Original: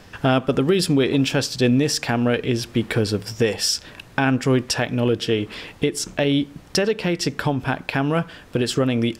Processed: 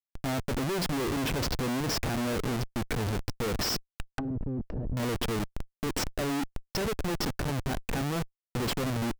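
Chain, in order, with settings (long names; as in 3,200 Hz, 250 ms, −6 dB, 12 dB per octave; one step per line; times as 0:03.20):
gate on every frequency bin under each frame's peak −15 dB strong
comparator with hysteresis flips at −25.5 dBFS
0:04.11–0:04.97: treble cut that deepens with the level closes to 330 Hz, closed at −21 dBFS
level −7.5 dB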